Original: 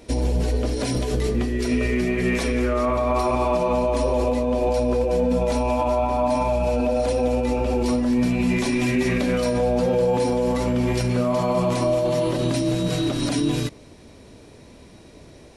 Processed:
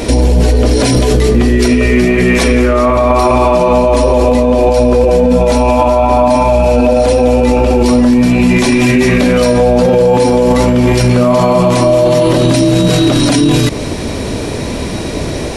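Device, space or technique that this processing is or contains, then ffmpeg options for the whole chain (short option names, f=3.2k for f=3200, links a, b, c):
loud club master: -af "acompressor=threshold=-27dB:ratio=2,asoftclip=type=hard:threshold=-18dB,alimiter=level_in=29dB:limit=-1dB:release=50:level=0:latency=1,volume=-1dB"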